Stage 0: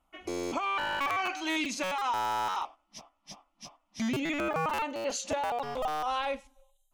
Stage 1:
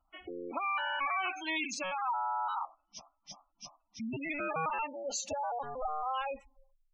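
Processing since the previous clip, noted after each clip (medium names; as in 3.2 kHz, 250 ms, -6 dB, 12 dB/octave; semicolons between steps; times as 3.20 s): spectral gate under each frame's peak -15 dB strong; peaking EQ 280 Hz -7.5 dB 2.7 oct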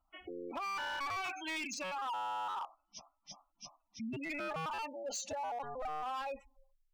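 overload inside the chain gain 33 dB; trim -2.5 dB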